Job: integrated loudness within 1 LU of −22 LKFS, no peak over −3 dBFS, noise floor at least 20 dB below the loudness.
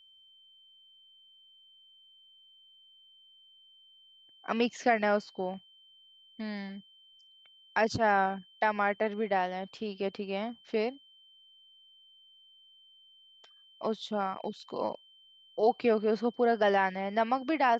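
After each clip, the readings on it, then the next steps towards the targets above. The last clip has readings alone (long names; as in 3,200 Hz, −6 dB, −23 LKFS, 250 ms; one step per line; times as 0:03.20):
interfering tone 3,100 Hz; level of the tone −57 dBFS; integrated loudness −30.5 LKFS; sample peak −13.5 dBFS; target loudness −22.0 LKFS
→ notch filter 3,100 Hz, Q 30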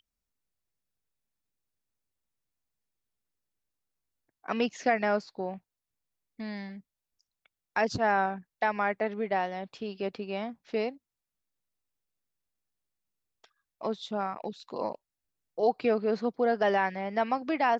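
interfering tone none found; integrated loudness −30.5 LKFS; sample peak −13.5 dBFS; target loudness −22.0 LKFS
→ level +8.5 dB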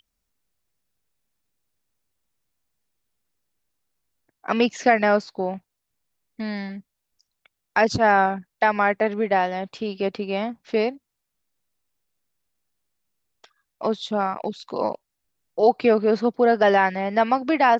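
integrated loudness −22.0 LKFS; sample peak −5.0 dBFS; background noise floor −80 dBFS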